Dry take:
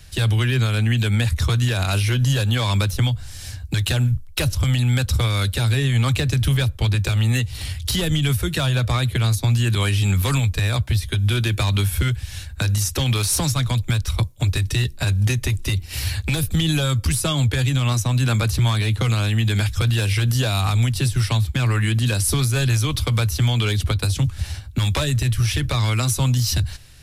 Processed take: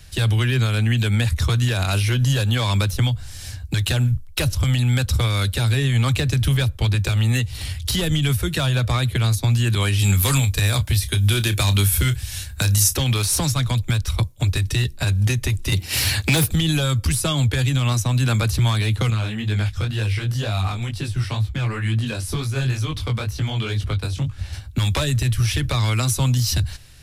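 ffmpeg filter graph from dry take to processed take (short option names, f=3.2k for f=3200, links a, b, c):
-filter_complex "[0:a]asettb=1/sr,asplit=3[a][b][c];[a]atrim=end=9.994[d];[b]atrim=start=9.99:end=12.96,asetpts=PTS-STARTPTS,afade=t=in:d=0.004:c=qsin,afade=t=out:st=2.966:d=0.004:c=qsin,highshelf=f=5.4k:g=10.5,asplit=2[e][f];[f]adelay=30,volume=-12dB[g];[e][g]amix=inputs=2:normalize=0,atrim=end_sample=130977[h];[c]atrim=start=12.956[i];[d][h]acrossfade=d=0.004:c1=hsin:c2=qsin[j];[j][i]acrossfade=d=0.004:c1=qsin:c2=hsin,asettb=1/sr,asplit=3[k][l][m];[k]atrim=end=15.724[n];[l]atrim=start=15.72:end=16.51,asetpts=PTS-STARTPTS,afade=t=in:d=0.004:c=qsin,afade=t=out:st=0.786:d=0.004:c=qsin,highpass=140,aeval=exprs='0.237*sin(PI/2*1.78*val(0)/0.237)':c=same[o];[m]atrim=start=16.506[p];[n][o]acrossfade=d=0.004:c1=hsin:c2=qsin[q];[q][p]acrossfade=d=0.004:c1=qsin:c2=hsin,asettb=1/sr,asplit=3[r][s][t];[r]atrim=end=19.104[u];[s]atrim=start=19.1:end=24.53,asetpts=PTS-STARTPTS,afade=t=in:d=0.004:c=qsin,afade=t=out:st=5.426:d=0.004:c=qsin,highshelf=f=6.2k:g=-10.5,flanger=delay=18.5:depth=5:speed=2.1[v];[t]atrim=start=24.526[w];[u][v]acrossfade=d=0.004:c1=hsin:c2=qsin[x];[x][w]acrossfade=d=0.004:c1=qsin:c2=hsin"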